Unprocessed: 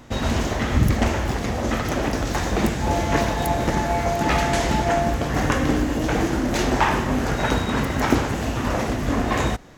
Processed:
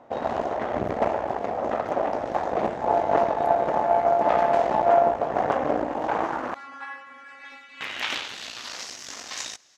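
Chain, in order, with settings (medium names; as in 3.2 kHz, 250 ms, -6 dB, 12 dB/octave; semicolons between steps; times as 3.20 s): Chebyshev shaper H 6 -13 dB, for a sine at -2.5 dBFS; band-pass sweep 680 Hz -> 5.6 kHz, 5.77–8.97 s; 6.54–7.81 s: inharmonic resonator 270 Hz, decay 0.45 s, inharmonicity 0.002; echo from a far wall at 34 m, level -29 dB; trim +4 dB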